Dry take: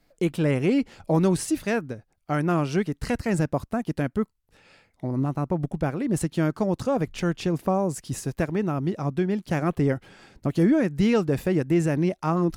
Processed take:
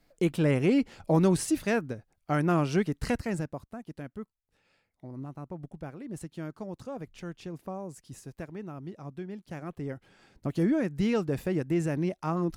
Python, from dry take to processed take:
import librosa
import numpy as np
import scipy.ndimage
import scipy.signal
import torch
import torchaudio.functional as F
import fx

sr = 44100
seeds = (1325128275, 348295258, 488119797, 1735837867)

y = fx.gain(x, sr, db=fx.line((3.1, -2.0), (3.63, -14.5), (9.77, -14.5), (10.5, -6.0)))